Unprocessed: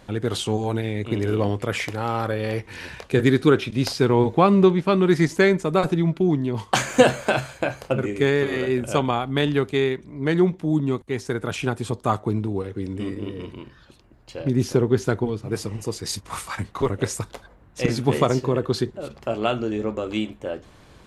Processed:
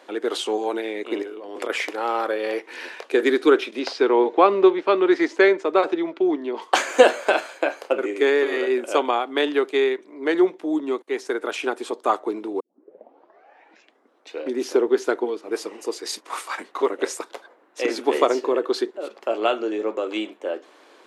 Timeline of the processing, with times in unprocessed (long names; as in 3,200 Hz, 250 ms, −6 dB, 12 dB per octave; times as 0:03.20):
0:01.22–0:01.70: compressor whose output falls as the input rises −29 dBFS, ratio −0.5
0:03.79–0:06.62: band-pass filter 150–4,700 Hz
0:12.60: tape start 1.94 s
whole clip: Butterworth high-pass 310 Hz 36 dB per octave; high-shelf EQ 5,700 Hz −7.5 dB; level +2.5 dB